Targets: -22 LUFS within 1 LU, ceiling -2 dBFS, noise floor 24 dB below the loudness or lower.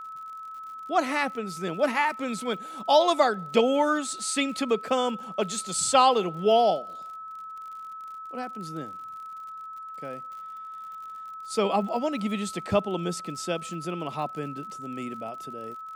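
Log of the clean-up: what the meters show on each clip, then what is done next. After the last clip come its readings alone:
tick rate 57 per s; steady tone 1.3 kHz; tone level -37 dBFS; loudness -26.5 LUFS; peak level -7.5 dBFS; loudness target -22.0 LUFS
-> de-click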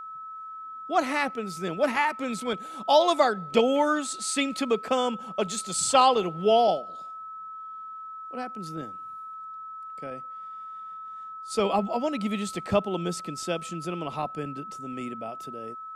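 tick rate 0 per s; steady tone 1.3 kHz; tone level -37 dBFS
-> band-stop 1.3 kHz, Q 30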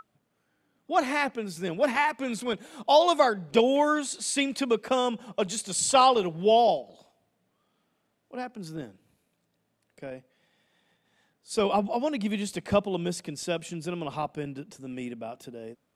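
steady tone not found; loudness -26.5 LUFS; peak level -8.0 dBFS; loudness target -22.0 LUFS
-> trim +4.5 dB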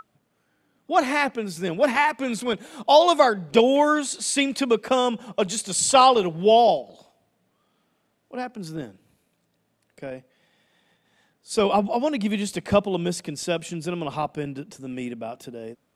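loudness -22.0 LUFS; peak level -3.5 dBFS; noise floor -71 dBFS

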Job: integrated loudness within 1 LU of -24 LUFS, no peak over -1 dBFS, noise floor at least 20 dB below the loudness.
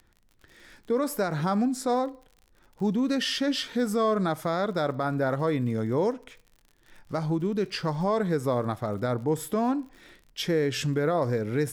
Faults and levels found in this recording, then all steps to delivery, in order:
tick rate 54 per s; loudness -27.5 LUFS; peak level -16.0 dBFS; loudness target -24.0 LUFS
-> de-click; trim +3.5 dB

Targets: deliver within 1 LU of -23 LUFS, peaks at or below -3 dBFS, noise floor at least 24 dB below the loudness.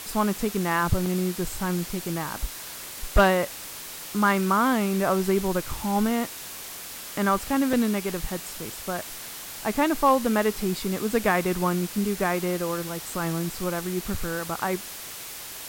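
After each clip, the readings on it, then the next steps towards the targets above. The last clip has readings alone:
dropouts 2; longest dropout 2.4 ms; noise floor -39 dBFS; noise floor target -50 dBFS; loudness -26.0 LUFS; peak level -9.5 dBFS; loudness target -23.0 LUFS
-> interpolate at 1.06/7.73 s, 2.4 ms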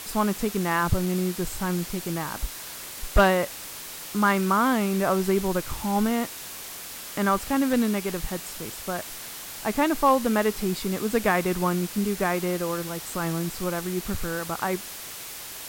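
dropouts 0; noise floor -39 dBFS; noise floor target -50 dBFS
-> noise reduction 11 dB, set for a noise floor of -39 dBFS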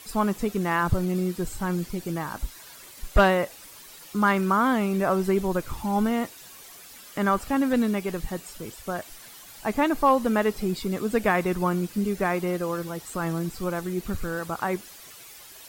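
noise floor -46 dBFS; noise floor target -50 dBFS
-> noise reduction 6 dB, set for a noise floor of -46 dBFS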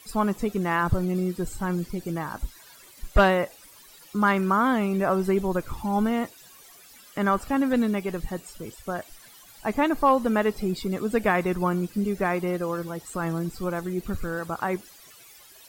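noise floor -51 dBFS; loudness -26.0 LUFS; peak level -10.0 dBFS; loudness target -23.0 LUFS
-> trim +3 dB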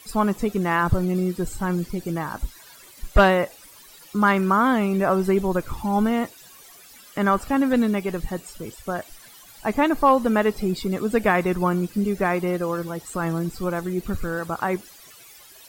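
loudness -23.0 LUFS; peak level -7.0 dBFS; noise floor -48 dBFS

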